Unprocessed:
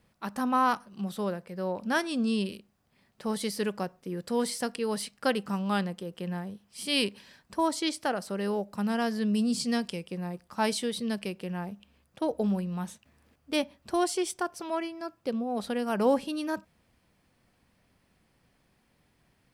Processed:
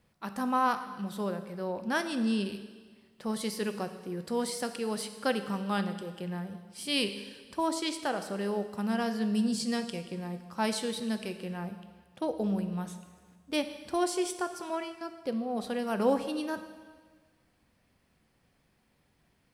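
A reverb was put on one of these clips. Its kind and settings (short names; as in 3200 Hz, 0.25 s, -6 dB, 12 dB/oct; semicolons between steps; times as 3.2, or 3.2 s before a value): plate-style reverb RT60 1.5 s, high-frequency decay 1×, DRR 8.5 dB; gain -2.5 dB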